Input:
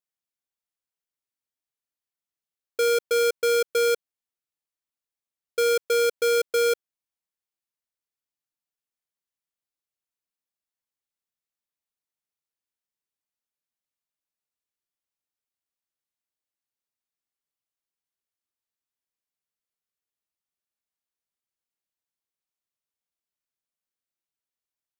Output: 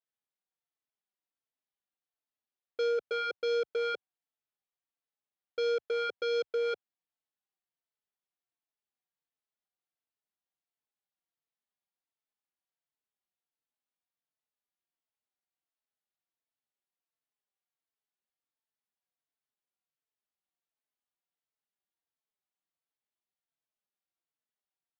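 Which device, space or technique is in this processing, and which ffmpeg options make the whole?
barber-pole flanger into a guitar amplifier: -filter_complex "[0:a]asplit=2[link_01][link_02];[link_02]adelay=4,afreqshift=-1.4[link_03];[link_01][link_03]amix=inputs=2:normalize=1,asoftclip=type=tanh:threshold=-27dB,highpass=93,equalizer=frequency=98:width_type=q:width=4:gain=-7,equalizer=frequency=750:width_type=q:width=4:gain=5,equalizer=frequency=2400:width_type=q:width=4:gain=-3,lowpass=frequency=4000:width=0.5412,lowpass=frequency=4000:width=1.3066"

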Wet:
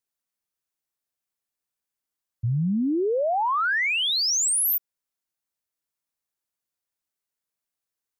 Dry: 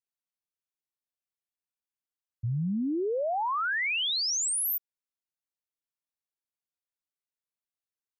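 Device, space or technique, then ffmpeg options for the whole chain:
exciter from parts: -filter_complex "[0:a]asplit=2[link_01][link_02];[link_02]highpass=frequency=3400:poles=1,asoftclip=type=tanh:threshold=-36.5dB,highpass=frequency=2100:width=0.5412,highpass=frequency=2100:width=1.3066,volume=-10dB[link_03];[link_01][link_03]amix=inputs=2:normalize=0,volume=5.5dB"

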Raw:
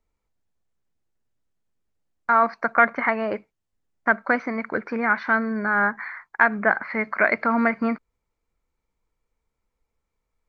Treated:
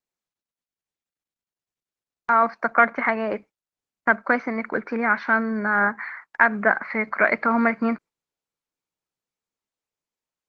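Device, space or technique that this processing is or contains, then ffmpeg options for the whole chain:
video call: -af "highpass=frequency=140:width=0.5412,highpass=frequency=140:width=1.3066,dynaudnorm=framelen=910:gausssize=5:maxgain=7dB,agate=range=-12dB:threshold=-41dB:ratio=16:detection=peak,volume=-1dB" -ar 48000 -c:a libopus -b:a 16k

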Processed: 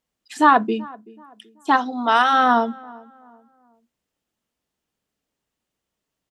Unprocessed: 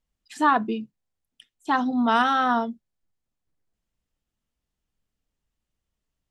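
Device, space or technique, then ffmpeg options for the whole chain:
filter by subtraction: -filter_complex "[0:a]asplit=2[link_01][link_02];[link_02]lowpass=390,volume=-1[link_03];[link_01][link_03]amix=inputs=2:normalize=0,asplit=3[link_04][link_05][link_06];[link_04]afade=type=out:start_time=1.76:duration=0.02[link_07];[link_05]highpass=frequency=670:poles=1,afade=type=in:start_time=1.76:duration=0.02,afade=type=out:start_time=2.32:duration=0.02[link_08];[link_06]afade=type=in:start_time=2.32:duration=0.02[link_09];[link_07][link_08][link_09]amix=inputs=3:normalize=0,asplit=2[link_10][link_11];[link_11]adelay=381,lowpass=frequency=1300:poles=1,volume=-21.5dB,asplit=2[link_12][link_13];[link_13]adelay=381,lowpass=frequency=1300:poles=1,volume=0.39,asplit=2[link_14][link_15];[link_15]adelay=381,lowpass=frequency=1300:poles=1,volume=0.39[link_16];[link_10][link_12][link_14][link_16]amix=inputs=4:normalize=0,volume=5dB"

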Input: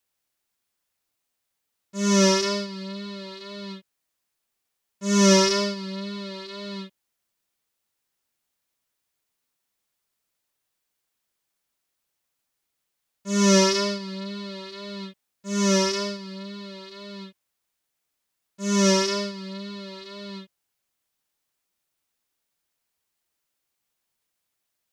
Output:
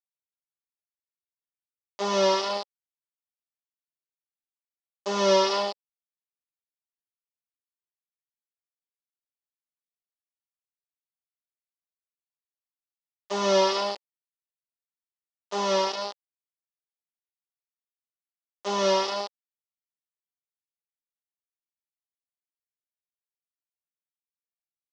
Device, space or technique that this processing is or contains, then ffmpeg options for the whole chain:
hand-held game console: -af "acrusher=bits=3:mix=0:aa=0.000001,highpass=460,equalizer=frequency=550:width_type=q:width=4:gain=4,equalizer=frequency=850:width_type=q:width=4:gain=5,equalizer=frequency=1600:width_type=q:width=4:gain=-9,equalizer=frequency=2300:width_type=q:width=4:gain=-9,equalizer=frequency=4000:width_type=q:width=4:gain=-3,lowpass=frequency=4400:width=0.5412,lowpass=frequency=4400:width=1.3066"

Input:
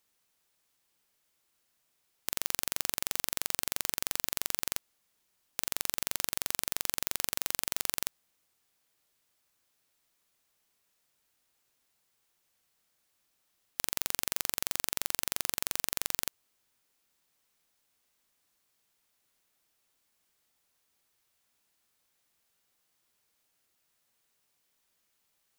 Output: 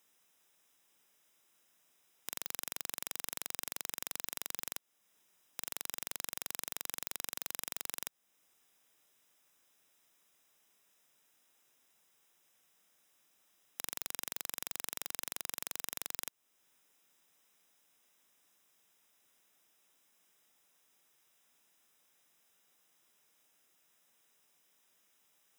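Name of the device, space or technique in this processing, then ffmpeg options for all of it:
PA system with an anti-feedback notch: -af "highpass=150,asuperstop=centerf=4400:order=12:qfactor=6,alimiter=limit=-15dB:level=0:latency=1:release=409,volume=4dB"

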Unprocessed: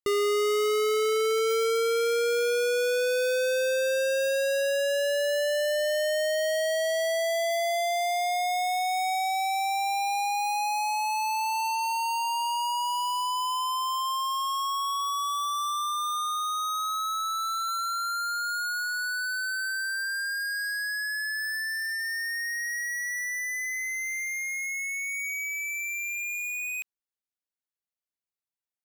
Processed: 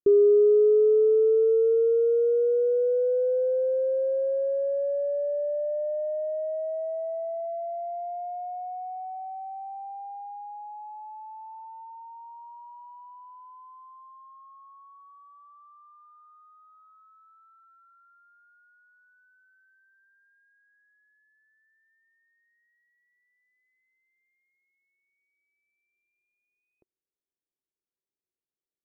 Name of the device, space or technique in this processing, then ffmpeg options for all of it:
under water: -af "lowpass=frequency=590:width=0.5412,lowpass=frequency=590:width=1.3066,equalizer=frequency=370:width_type=o:width=0.56:gain=11"

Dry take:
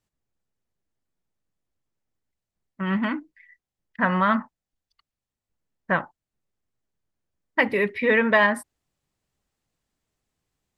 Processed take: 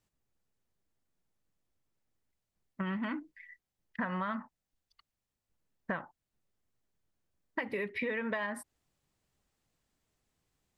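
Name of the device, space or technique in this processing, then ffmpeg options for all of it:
serial compression, peaks first: -af "acompressor=threshold=-28dB:ratio=5,acompressor=threshold=-35dB:ratio=2"

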